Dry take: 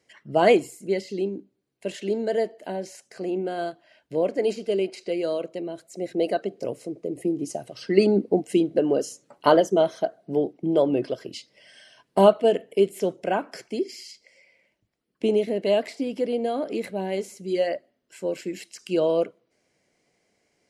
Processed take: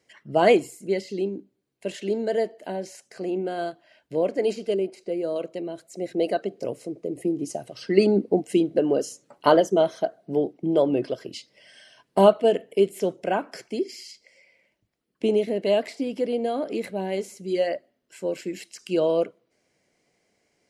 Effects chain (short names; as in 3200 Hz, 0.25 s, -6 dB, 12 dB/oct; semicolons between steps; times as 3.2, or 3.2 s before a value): 4.74–5.36 bell 3500 Hz -11 dB 2.7 oct